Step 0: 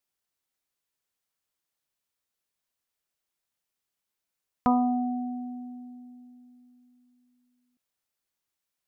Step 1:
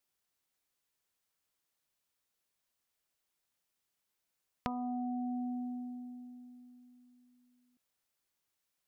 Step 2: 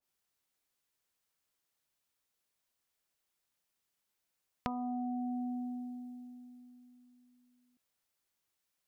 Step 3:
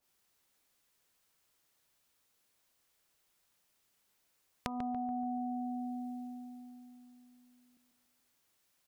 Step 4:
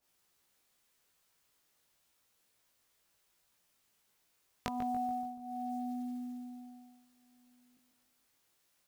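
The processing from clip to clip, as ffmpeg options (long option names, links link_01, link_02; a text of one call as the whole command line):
ffmpeg -i in.wav -af "acompressor=threshold=-36dB:ratio=12,volume=1dB" out.wav
ffmpeg -i in.wav -af "adynamicequalizer=threshold=0.001:dfrequency=2000:dqfactor=0.7:tfrequency=2000:tqfactor=0.7:attack=5:release=100:ratio=0.375:range=2:mode=boostabove:tftype=highshelf" out.wav
ffmpeg -i in.wav -filter_complex "[0:a]acompressor=threshold=-44dB:ratio=6,asplit=2[link_01][link_02];[link_02]adelay=143,lowpass=frequency=1500:poles=1,volume=-7dB,asplit=2[link_03][link_04];[link_04]adelay=143,lowpass=frequency=1500:poles=1,volume=0.54,asplit=2[link_05][link_06];[link_06]adelay=143,lowpass=frequency=1500:poles=1,volume=0.54,asplit=2[link_07][link_08];[link_08]adelay=143,lowpass=frequency=1500:poles=1,volume=0.54,asplit=2[link_09][link_10];[link_10]adelay=143,lowpass=frequency=1500:poles=1,volume=0.54,asplit=2[link_11][link_12];[link_12]adelay=143,lowpass=frequency=1500:poles=1,volume=0.54,asplit=2[link_13][link_14];[link_14]adelay=143,lowpass=frequency=1500:poles=1,volume=0.54[link_15];[link_01][link_03][link_05][link_07][link_09][link_11][link_13][link_15]amix=inputs=8:normalize=0,volume=8dB" out.wav
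ffmpeg -i in.wav -af "flanger=delay=17:depth=2.1:speed=0.32,acrusher=bits=7:mode=log:mix=0:aa=0.000001,volume=4dB" out.wav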